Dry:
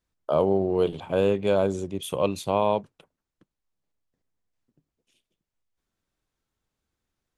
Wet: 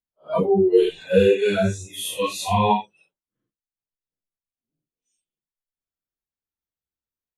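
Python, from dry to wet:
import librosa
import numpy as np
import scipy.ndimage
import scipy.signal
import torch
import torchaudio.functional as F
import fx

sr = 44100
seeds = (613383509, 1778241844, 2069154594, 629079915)

y = fx.phase_scramble(x, sr, seeds[0], window_ms=200)
y = fx.noise_reduce_blind(y, sr, reduce_db=26)
y = F.gain(torch.from_numpy(y), 9.0).numpy()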